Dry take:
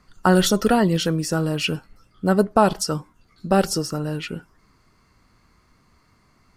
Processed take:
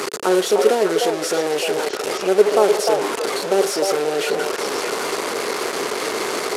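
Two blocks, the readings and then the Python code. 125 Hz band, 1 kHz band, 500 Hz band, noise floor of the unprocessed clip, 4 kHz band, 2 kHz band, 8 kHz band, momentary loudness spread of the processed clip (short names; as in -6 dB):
-16.0 dB, +2.0 dB, +7.0 dB, -61 dBFS, +4.0 dB, +5.0 dB, +4.5 dB, 7 LU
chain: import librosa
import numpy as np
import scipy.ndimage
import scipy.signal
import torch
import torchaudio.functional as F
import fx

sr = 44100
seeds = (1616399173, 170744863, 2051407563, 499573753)

p1 = fx.delta_mod(x, sr, bps=64000, step_db=-13.5)
p2 = fx.highpass_res(p1, sr, hz=410.0, q=4.9)
p3 = p2 + fx.echo_stepped(p2, sr, ms=303, hz=670.0, octaves=1.4, feedback_pct=70, wet_db=-1, dry=0)
y = F.gain(torch.from_numpy(p3), -5.5).numpy()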